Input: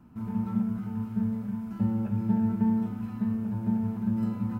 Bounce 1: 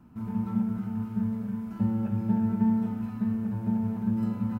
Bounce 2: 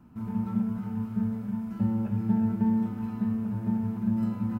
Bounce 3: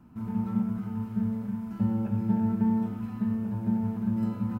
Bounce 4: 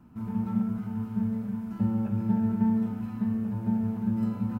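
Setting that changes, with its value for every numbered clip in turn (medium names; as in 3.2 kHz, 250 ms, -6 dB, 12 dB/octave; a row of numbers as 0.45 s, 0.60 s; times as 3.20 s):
speakerphone echo, time: 230 ms, 360 ms, 90 ms, 140 ms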